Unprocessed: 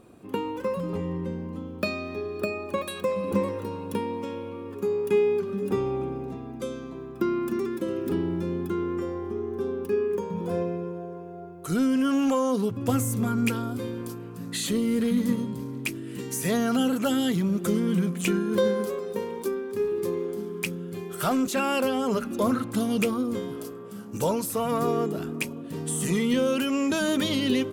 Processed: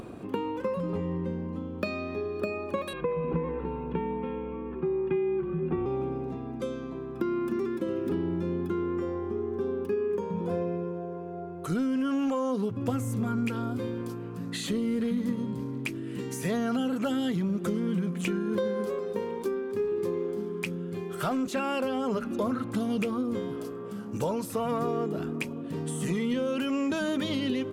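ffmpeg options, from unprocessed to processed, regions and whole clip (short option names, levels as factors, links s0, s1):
-filter_complex "[0:a]asettb=1/sr,asplit=3[s0][s1][s2];[s0]atrim=end=2.934[s3];[s1]atrim=start=2.93:end=5.86,asetpts=PTS-STARTPTS,afade=t=in:d=0.004:c=qsin,afade=t=out:st=2.926:d=0.004:c=qsin,lowpass=f=2800:w=0.5412,lowpass=f=2800:w=1.3066,afreqshift=-33[s4];[s2]atrim=start=5.856[s5];[s3][s4]acrossfade=d=0.004:c1=hsin:c2=qsin[s6];[s6][s5]acrossfade=d=0.004:c1=qsin:c2=hsin,acompressor=threshold=0.0562:ratio=6,lowpass=f=3200:p=1,acompressor=mode=upward:threshold=0.0251:ratio=2.5"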